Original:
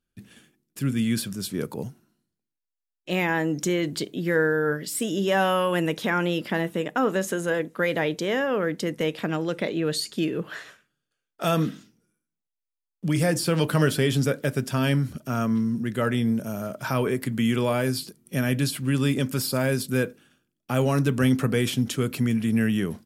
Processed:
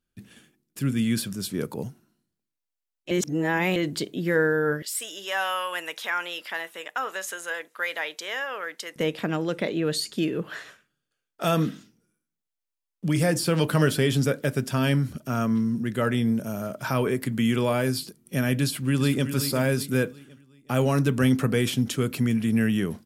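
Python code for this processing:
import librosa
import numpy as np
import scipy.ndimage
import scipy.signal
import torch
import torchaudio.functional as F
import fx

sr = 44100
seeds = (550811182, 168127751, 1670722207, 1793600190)

y = fx.highpass(x, sr, hz=1000.0, slope=12, at=(4.82, 8.96))
y = fx.echo_throw(y, sr, start_s=18.63, length_s=0.67, ms=370, feedback_pct=40, wet_db=-9.5)
y = fx.edit(y, sr, fx.reverse_span(start_s=3.11, length_s=0.65), tone=tone)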